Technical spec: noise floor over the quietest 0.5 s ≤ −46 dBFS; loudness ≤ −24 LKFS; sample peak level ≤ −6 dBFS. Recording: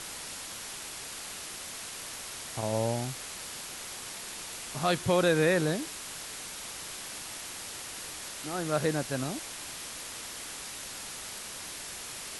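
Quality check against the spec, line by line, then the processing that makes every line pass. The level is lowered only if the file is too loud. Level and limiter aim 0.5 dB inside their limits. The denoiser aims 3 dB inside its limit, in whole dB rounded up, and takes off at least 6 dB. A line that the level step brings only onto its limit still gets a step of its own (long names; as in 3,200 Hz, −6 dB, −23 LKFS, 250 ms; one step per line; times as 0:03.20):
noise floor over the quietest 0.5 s −41 dBFS: out of spec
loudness −33.5 LKFS: in spec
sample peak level −13.0 dBFS: in spec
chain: broadband denoise 8 dB, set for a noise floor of −41 dBFS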